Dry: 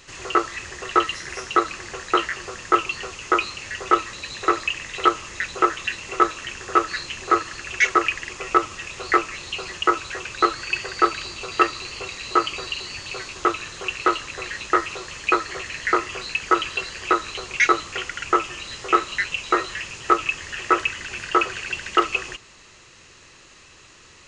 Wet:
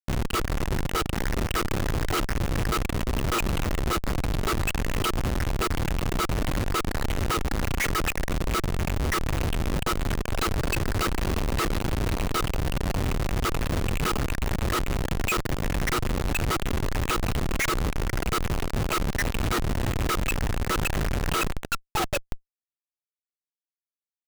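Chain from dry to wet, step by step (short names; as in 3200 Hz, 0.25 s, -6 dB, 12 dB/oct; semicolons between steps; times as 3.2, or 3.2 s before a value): painted sound fall, 21.54–22.47, 290–2100 Hz -24 dBFS; level quantiser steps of 22 dB; Schmitt trigger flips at -36.5 dBFS; gain +7.5 dB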